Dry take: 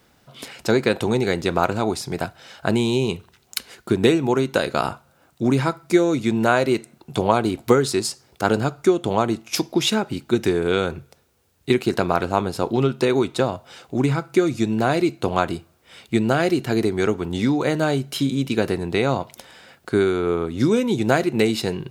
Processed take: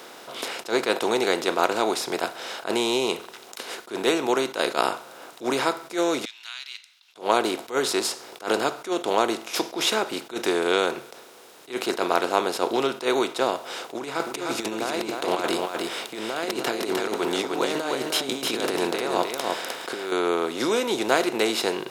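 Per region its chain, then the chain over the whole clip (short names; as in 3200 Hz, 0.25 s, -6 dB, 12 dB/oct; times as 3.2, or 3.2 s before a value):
6.25–7.16 inverse Chebyshev high-pass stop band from 560 Hz, stop band 80 dB + air absorption 290 m
13.96–20.12 negative-ratio compressor -25 dBFS, ratio -0.5 + echo 0.306 s -6 dB
whole clip: per-bin compression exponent 0.6; HPF 420 Hz 12 dB/oct; attack slew limiter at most 240 dB/s; gain -3.5 dB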